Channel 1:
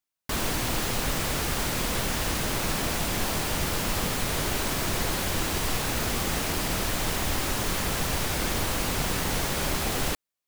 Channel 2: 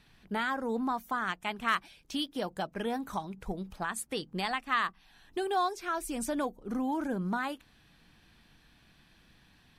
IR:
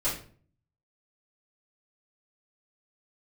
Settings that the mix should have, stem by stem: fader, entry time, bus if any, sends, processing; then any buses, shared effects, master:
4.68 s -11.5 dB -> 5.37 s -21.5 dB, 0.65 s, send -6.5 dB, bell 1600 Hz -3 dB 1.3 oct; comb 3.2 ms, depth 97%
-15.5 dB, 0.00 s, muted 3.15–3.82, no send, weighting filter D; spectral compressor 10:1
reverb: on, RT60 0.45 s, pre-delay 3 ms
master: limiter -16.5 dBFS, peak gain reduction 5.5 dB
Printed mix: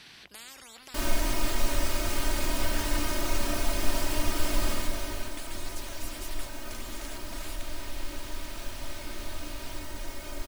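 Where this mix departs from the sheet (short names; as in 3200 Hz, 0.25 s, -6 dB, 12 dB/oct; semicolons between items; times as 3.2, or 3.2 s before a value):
stem 1: missing bell 1600 Hz -3 dB 1.3 oct; master: missing limiter -16.5 dBFS, peak gain reduction 5.5 dB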